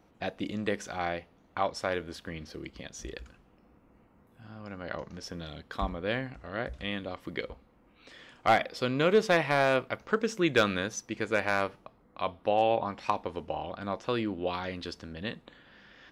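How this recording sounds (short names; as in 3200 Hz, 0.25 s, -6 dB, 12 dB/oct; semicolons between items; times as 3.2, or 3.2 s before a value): noise floor -63 dBFS; spectral tilt -3.5 dB/oct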